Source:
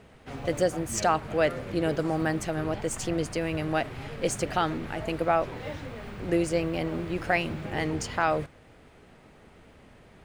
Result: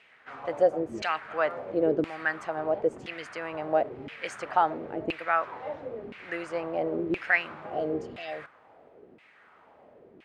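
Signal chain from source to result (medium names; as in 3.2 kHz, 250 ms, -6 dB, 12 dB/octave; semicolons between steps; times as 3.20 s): spectral replace 7.70–8.36 s, 780–2600 Hz; LFO band-pass saw down 0.98 Hz 310–2600 Hz; trim +7 dB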